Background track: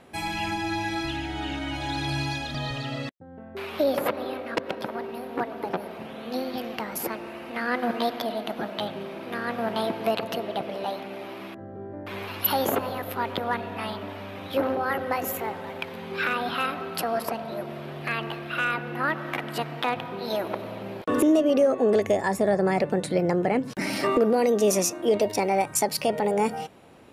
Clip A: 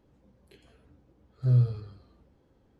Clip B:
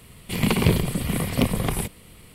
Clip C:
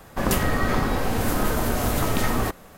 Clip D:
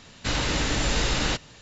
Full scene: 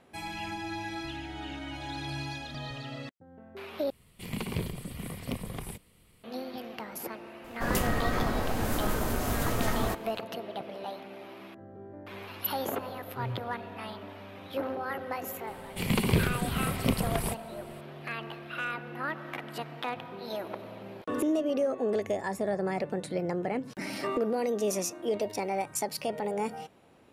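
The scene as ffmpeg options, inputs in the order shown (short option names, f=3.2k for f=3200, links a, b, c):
-filter_complex "[2:a]asplit=2[a][b];[0:a]volume=-8dB,asplit=2[c][d];[c]atrim=end=3.904[e];[a]atrim=end=2.34,asetpts=PTS-STARTPTS,volume=-14dB[f];[d]atrim=start=6.236[g];[3:a]atrim=end=2.77,asetpts=PTS-STARTPTS,volume=-6.5dB,afade=t=in:d=0.004:c=hsin,afade=t=out:st=2.766:d=0.004:c=hsin,adelay=7440[h];[1:a]atrim=end=2.79,asetpts=PTS-STARTPTS,volume=-15dB,afade=t=in:d=0.004:c=hsin,afade=t=out:st=2.786:d=0.004:c=hsin,adelay=11730[i];[b]atrim=end=2.34,asetpts=PTS-STARTPTS,volume=-6dB,afade=t=in:d=0.004:c=hsin,afade=t=out:st=2.336:d=0.004:c=hsin,adelay=15470[j];[e][f]acrossfade=d=0.004:c1=hsin:c2=hsin[k];[k][g]acrossfade=d=0.004:c1=hsin:c2=hsin[l];[l][h][i][j]amix=inputs=4:normalize=0"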